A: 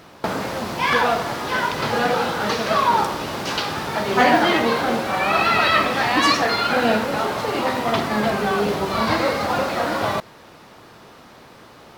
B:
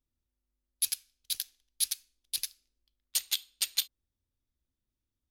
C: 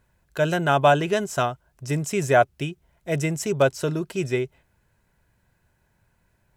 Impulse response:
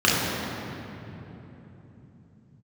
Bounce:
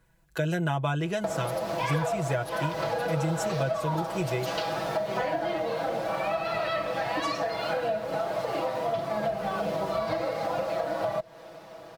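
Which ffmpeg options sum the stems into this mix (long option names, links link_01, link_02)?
-filter_complex "[0:a]equalizer=frequency=620:width_type=o:width=0.55:gain=14.5,adelay=1000,volume=-8.5dB[link_01];[1:a]adelay=650,volume=-13dB[link_02];[2:a]volume=-1.5dB[link_03];[link_01][link_02][link_03]amix=inputs=3:normalize=0,aecho=1:1:6.1:0.88,acrossover=split=120[link_04][link_05];[link_05]acompressor=threshold=-26dB:ratio=10[link_06];[link_04][link_06]amix=inputs=2:normalize=0"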